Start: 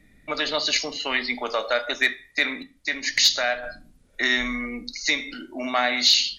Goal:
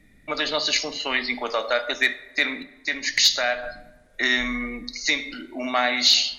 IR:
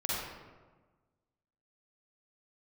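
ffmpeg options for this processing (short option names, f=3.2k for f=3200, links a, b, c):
-filter_complex "[0:a]asplit=2[a][b];[1:a]atrim=start_sample=2205,asetrate=35280,aresample=44100[c];[b][c]afir=irnorm=-1:irlink=0,volume=-26dB[d];[a][d]amix=inputs=2:normalize=0"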